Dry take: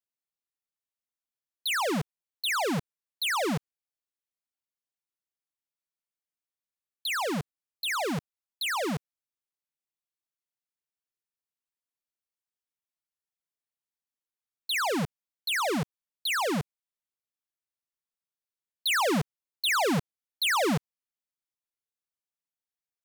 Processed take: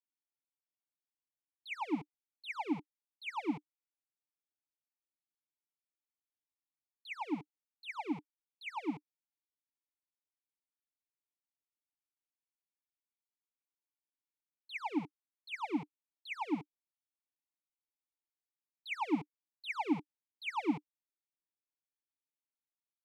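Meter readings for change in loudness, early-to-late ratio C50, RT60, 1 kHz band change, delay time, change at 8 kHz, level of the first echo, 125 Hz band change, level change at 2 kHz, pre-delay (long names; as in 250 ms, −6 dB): −11.0 dB, no reverb audible, no reverb audible, −10.0 dB, no echo audible, below −25 dB, no echo audible, −17.0 dB, −13.5 dB, no reverb audible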